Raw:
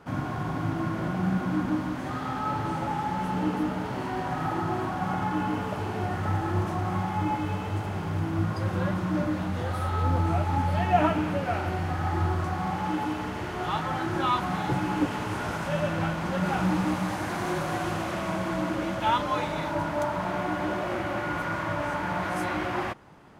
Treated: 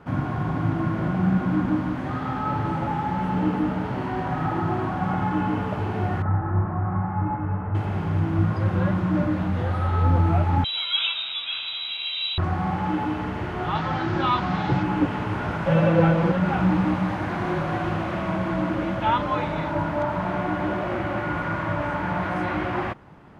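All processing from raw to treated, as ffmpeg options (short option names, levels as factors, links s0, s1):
-filter_complex "[0:a]asettb=1/sr,asplit=3[s0][s1][s2];[s0]atrim=end=6.224[s3];[s1]atrim=start=6.22:end=7.75,asetpts=PTS-STARTPTS,afade=t=in:d=0.004:c=qsin,afade=t=out:st=1.526:d=0.004:c=qsin,lowpass=f=1600:w=0.5412,lowpass=f=1600:w=1.3066,equalizer=f=380:t=o:w=1.9:g=-5.5[s4];[s2]atrim=start=7.746[s5];[s3][s4]acrossfade=d=0.004:c1=hsin:c2=qsin[s6];[s6][s5]acrossfade=d=0.004:c1=qsin:c2=hsin,asettb=1/sr,asplit=3[s7][s8][s9];[s7]atrim=end=10.644[s10];[s8]atrim=start=10.64:end=12.38,asetpts=PTS-STARTPTS,afade=t=in:d=0.004:c=qsin,afade=t=out:st=1.736:d=0.004:c=qsin,lowpass=f=3400:t=q:w=0.5098,lowpass=f=3400:t=q:w=0.6013,lowpass=f=3400:t=q:w=0.9,lowpass=f=3400:t=q:w=2.563,afreqshift=-4000,equalizer=f=1800:w=5.4:g=-13,asplit=2[s11][s12];[s12]adelay=12,volume=0.251[s13];[s11][s13]amix=inputs=2:normalize=0,atrim=end_sample=76734[s14];[s9]atrim=start=12.376[s15];[s10][s14]acrossfade=d=0.004:c1=hsin:c2=qsin[s16];[s16][s15]acrossfade=d=0.004:c1=qsin:c2=hsin,asettb=1/sr,asplit=3[s17][s18][s19];[s17]atrim=end=13.754[s20];[s18]atrim=start=13.75:end=14.83,asetpts=PTS-STARTPTS,afade=t=in:d=0.004:c=qsin,afade=t=out:st=1.076:d=0.004:c=qsin,lowpass=f=8700:w=0.5412,lowpass=f=8700:w=1.3066,equalizer=f=4800:t=o:w=1.2:g=8[s21];[s19]atrim=start=14.826[s22];[s20][s21]acrossfade=d=0.004:c1=hsin:c2=qsin[s23];[s23][s22]acrossfade=d=0.004:c1=qsin:c2=hsin,asettb=1/sr,asplit=3[s24][s25][s26];[s24]atrim=end=15.664[s27];[s25]atrim=start=15.66:end=16.32,asetpts=PTS-STARTPTS,afade=t=in:d=0.004:c=qsin,afade=t=out:st=0.656:d=0.004:c=qsin,equalizer=f=510:w=3.4:g=12.5,aecho=1:1:6:0.93,atrim=end_sample=29106[s28];[s26]atrim=start=16.316[s29];[s27][s28]acrossfade=d=0.004:c1=hsin:c2=qsin[s30];[s30][s29]acrossfade=d=0.004:c1=qsin:c2=hsin,acrossover=split=5100[s31][s32];[s32]acompressor=threshold=0.00158:ratio=4:attack=1:release=60[s33];[s31][s33]amix=inputs=2:normalize=0,bass=f=250:g=4,treble=f=4000:g=-10,volume=1.33"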